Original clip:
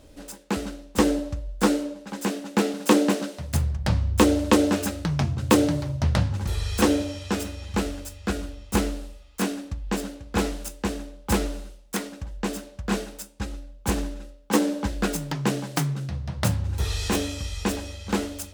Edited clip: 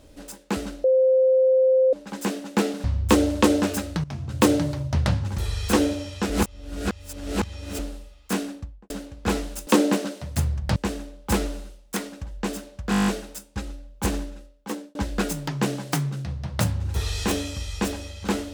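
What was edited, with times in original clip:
0.84–1.93 s: bleep 521 Hz -14.5 dBFS
2.84–3.93 s: move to 10.76 s
5.13–5.52 s: fade in, from -17.5 dB
7.39–8.88 s: reverse
9.56–9.99 s: studio fade out
12.91 s: stutter 0.02 s, 9 plays
14.00–14.79 s: fade out linear

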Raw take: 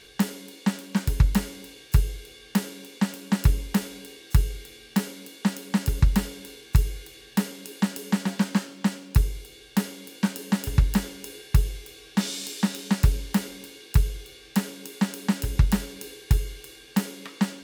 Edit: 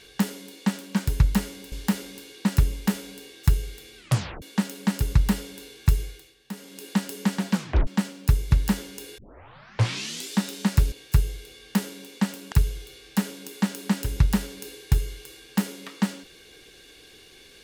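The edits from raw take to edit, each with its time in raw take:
1.72–3.32 s: swap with 13.18–13.91 s
4.84 s: tape stop 0.45 s
6.90–7.72 s: dip -12.5 dB, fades 0.32 s
8.41 s: tape stop 0.33 s
9.38–10.77 s: delete
11.44 s: tape start 1.13 s

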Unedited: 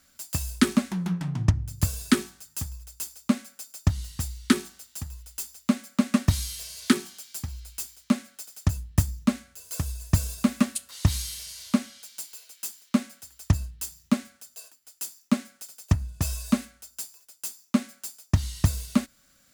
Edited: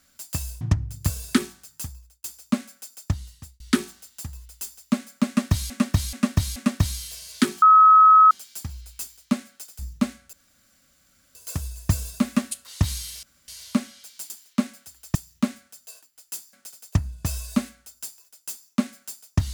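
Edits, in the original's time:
0.61–1.38 s: delete
2.52–3.01 s: fade out
3.70–4.37 s: fade out
6.04–6.47 s: loop, 4 plays
7.10 s: add tone 1.28 kHz -9 dBFS 0.69 s
8.58–9.05 s: delete
9.59 s: insert room tone 1.02 s
11.47 s: insert room tone 0.25 s
12.29–12.66 s: delete
13.51–13.84 s: delete
15.22–15.49 s: delete

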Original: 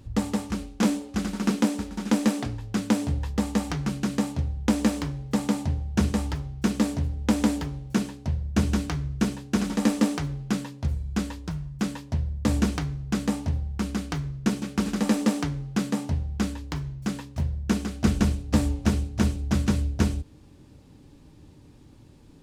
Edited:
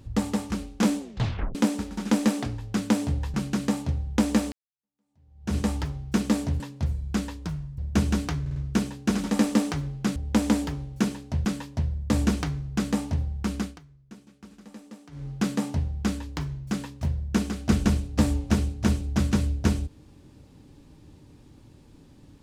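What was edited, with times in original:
0.99 s: tape stop 0.56 s
3.34–3.84 s: delete
5.02–6.07 s: fade in exponential
7.10–8.39 s: swap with 10.62–11.80 s
9.02 s: stutter 0.05 s, 4 plays
13.95–15.65 s: dip -22 dB, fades 0.19 s

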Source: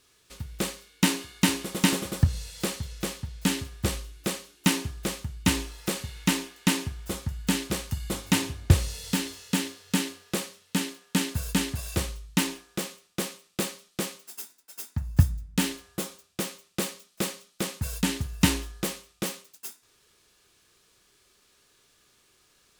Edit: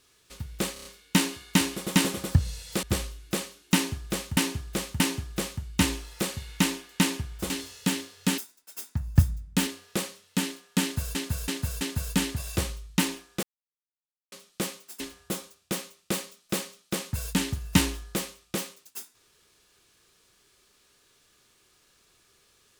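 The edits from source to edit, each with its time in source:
0.73 s: stutter 0.03 s, 5 plays
2.71–3.76 s: delete
4.67–5.30 s: loop, 3 plays
7.17–9.17 s: delete
11.20–11.53 s: loop, 4 plays
12.82–13.71 s: mute
14.39–15.68 s: move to 10.05 s

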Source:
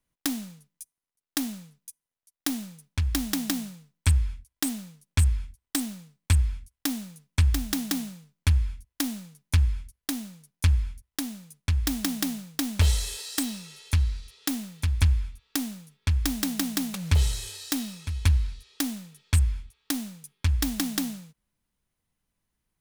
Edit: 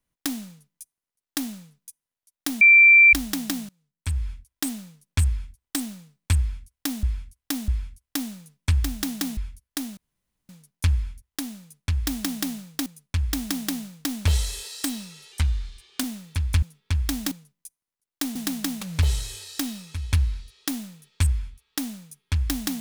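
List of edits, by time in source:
0.47–1.51 s: copy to 16.48 s
2.61–3.13 s: bleep 2.35 kHz -9 dBFS
3.69–4.30 s: fade in quadratic, from -22.5 dB
6.38–7.03 s: loop, 3 plays
8.07–9.69 s: delete
10.29 s: insert room tone 0.52 s
11.40–12.66 s: loop, 2 plays
13.86–14.51 s: speed 91%
15.10–15.79 s: delete

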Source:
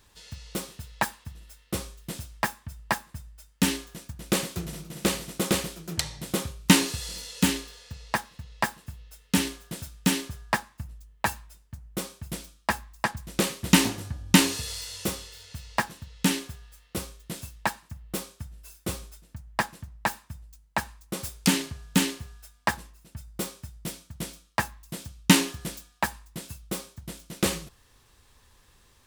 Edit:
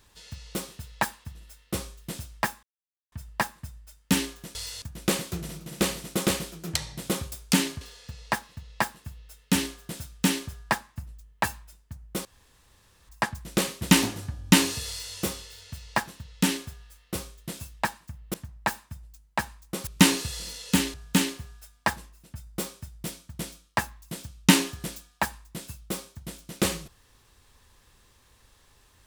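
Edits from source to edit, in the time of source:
2.63 s: insert silence 0.49 s
6.56–7.63 s: swap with 21.26–21.75 s
12.07–12.91 s: room tone
14.70–14.97 s: copy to 4.06 s
18.16–19.73 s: delete

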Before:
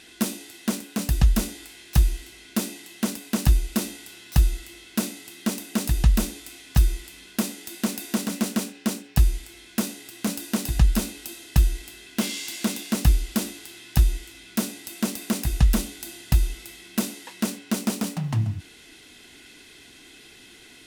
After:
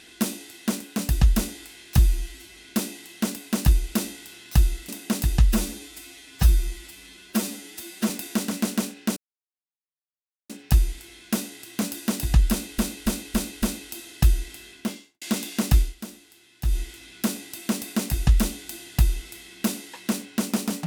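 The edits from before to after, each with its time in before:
1.98–2.37 s: stretch 1.5×
4.69–5.54 s: delete
6.14–7.88 s: stretch 1.5×
8.95 s: insert silence 1.33 s
10.96–11.24 s: loop, 5 plays
11.99–12.55 s: studio fade out
13.13–14.12 s: dip -12 dB, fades 0.16 s

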